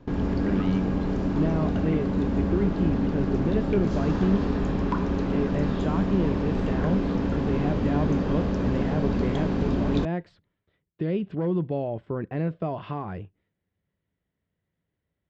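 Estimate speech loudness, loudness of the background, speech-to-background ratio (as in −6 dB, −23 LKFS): −30.0 LKFS, −27.0 LKFS, −3.0 dB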